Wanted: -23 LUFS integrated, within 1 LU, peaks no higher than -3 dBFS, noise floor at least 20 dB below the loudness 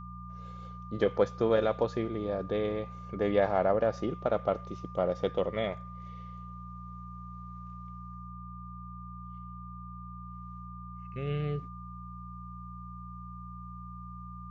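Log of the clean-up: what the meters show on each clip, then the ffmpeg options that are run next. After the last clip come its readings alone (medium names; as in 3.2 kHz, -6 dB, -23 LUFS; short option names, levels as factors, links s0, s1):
hum 60 Hz; highest harmonic 180 Hz; hum level -42 dBFS; steady tone 1.2 kHz; tone level -46 dBFS; loudness -31.0 LUFS; peak level -13.0 dBFS; loudness target -23.0 LUFS
-> -af "bandreject=f=60:t=h:w=4,bandreject=f=120:t=h:w=4,bandreject=f=180:t=h:w=4"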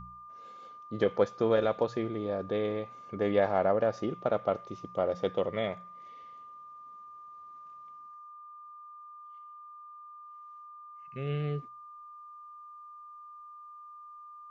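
hum not found; steady tone 1.2 kHz; tone level -46 dBFS
-> -af "bandreject=f=1200:w=30"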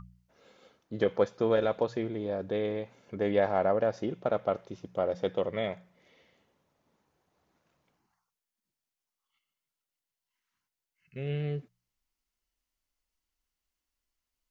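steady tone not found; loudness -31.0 LUFS; peak level -13.0 dBFS; loudness target -23.0 LUFS
-> -af "volume=2.51"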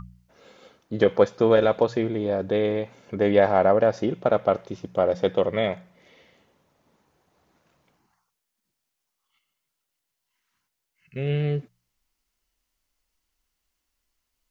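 loudness -23.0 LUFS; peak level -5.0 dBFS; noise floor -82 dBFS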